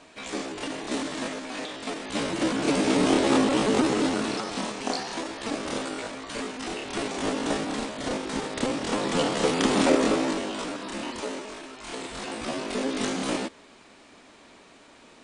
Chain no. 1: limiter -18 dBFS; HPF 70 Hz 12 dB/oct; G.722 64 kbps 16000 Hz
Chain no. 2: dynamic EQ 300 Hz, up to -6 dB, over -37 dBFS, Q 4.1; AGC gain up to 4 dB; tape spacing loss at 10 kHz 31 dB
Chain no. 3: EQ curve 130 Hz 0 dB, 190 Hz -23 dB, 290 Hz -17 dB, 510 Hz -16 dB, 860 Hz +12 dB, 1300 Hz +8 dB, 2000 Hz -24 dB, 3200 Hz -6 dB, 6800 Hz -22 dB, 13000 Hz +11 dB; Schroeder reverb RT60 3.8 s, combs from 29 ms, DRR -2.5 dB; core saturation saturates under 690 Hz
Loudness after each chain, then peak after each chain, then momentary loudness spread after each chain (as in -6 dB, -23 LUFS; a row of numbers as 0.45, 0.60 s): -30.0, -27.0, -24.5 LUFS; -16.5, -7.0, -6.0 dBFS; 8, 13, 11 LU